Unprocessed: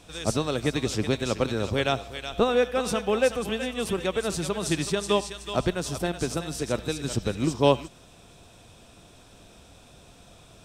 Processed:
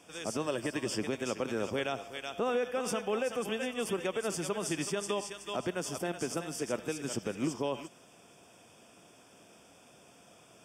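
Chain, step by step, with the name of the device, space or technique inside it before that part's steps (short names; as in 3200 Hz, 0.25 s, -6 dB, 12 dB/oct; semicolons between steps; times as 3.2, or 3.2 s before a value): PA system with an anti-feedback notch (HPF 200 Hz 12 dB/oct; Butterworth band-stop 4000 Hz, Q 3.5; limiter -18.5 dBFS, peak gain reduction 11.5 dB); 0.46–0.99 ripple EQ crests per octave 1.3, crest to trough 7 dB; gain -4 dB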